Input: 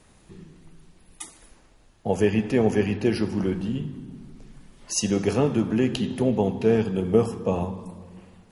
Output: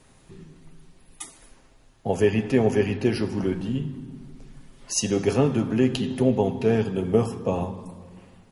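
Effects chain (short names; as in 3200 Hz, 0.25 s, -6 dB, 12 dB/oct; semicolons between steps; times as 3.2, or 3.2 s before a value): comb 7.5 ms, depth 35%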